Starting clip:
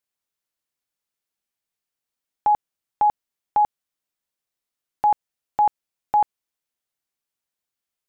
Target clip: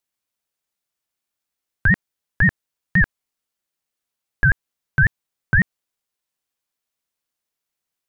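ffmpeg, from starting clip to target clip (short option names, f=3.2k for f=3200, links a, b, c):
-af "areverse,aeval=exprs='val(0)*sin(2*PI*860*n/s+860*0.2/5.7*sin(2*PI*5.7*n/s))':c=same,volume=5.5dB"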